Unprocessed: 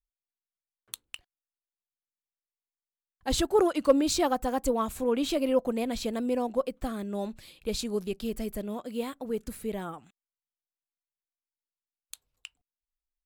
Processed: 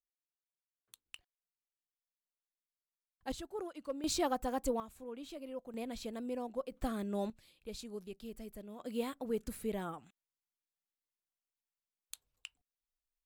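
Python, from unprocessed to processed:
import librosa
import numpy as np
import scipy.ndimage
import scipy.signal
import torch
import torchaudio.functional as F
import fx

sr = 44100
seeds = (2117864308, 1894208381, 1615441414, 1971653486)

y = fx.gain(x, sr, db=fx.steps((0.0, -19.0), (1.06, -9.5), (3.32, -19.0), (4.04, -7.0), (4.8, -19.0), (5.74, -11.0), (6.72, -3.5), (7.3, -14.0), (8.8, -4.0)))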